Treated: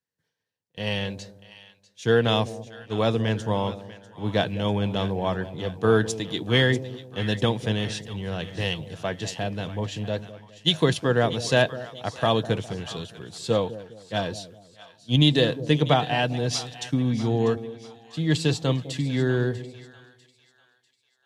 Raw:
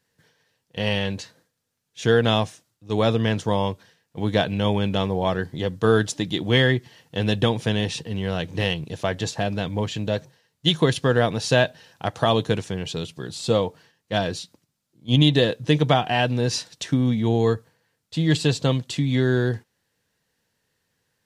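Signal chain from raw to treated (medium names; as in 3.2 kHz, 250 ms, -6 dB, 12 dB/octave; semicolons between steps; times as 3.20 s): two-band feedback delay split 740 Hz, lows 205 ms, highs 645 ms, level -12 dB; three bands expanded up and down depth 40%; trim -3 dB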